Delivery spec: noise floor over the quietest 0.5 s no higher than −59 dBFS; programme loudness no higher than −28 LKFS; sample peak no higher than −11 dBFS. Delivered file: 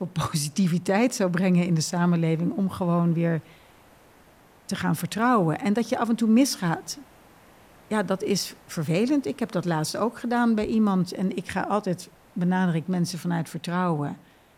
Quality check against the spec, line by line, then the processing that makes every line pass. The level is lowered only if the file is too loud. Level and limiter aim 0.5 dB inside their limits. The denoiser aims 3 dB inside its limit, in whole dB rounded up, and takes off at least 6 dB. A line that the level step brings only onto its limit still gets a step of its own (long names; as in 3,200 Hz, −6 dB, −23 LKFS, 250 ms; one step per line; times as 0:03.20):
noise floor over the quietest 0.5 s −55 dBFS: out of spec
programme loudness −25.0 LKFS: out of spec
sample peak −9.0 dBFS: out of spec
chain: broadband denoise 6 dB, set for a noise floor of −55 dBFS
level −3.5 dB